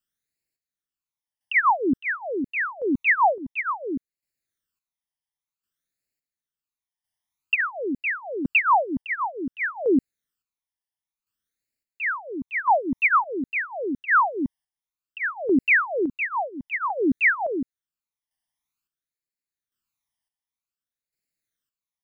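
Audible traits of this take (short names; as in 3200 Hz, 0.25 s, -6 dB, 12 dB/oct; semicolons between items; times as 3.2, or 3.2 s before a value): phasing stages 12, 0.53 Hz, lowest notch 420–1100 Hz; chopped level 0.71 Hz, depth 60%, duty 40%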